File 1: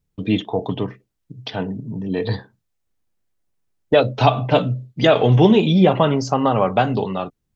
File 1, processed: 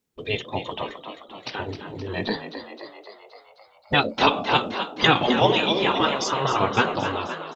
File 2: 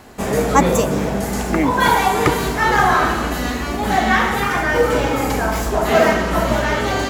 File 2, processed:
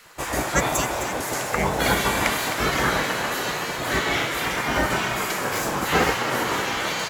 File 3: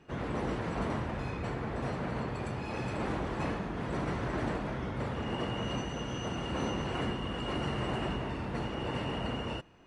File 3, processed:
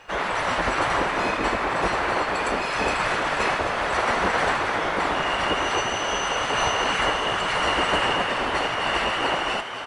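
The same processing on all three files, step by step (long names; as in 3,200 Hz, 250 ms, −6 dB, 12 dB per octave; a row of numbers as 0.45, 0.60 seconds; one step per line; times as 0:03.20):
gate on every frequency bin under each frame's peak −10 dB weak
echo with shifted repeats 261 ms, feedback 63%, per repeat +67 Hz, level −9.5 dB
loudness normalisation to −23 LKFS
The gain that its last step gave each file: +3.0, −0.5, +17.5 decibels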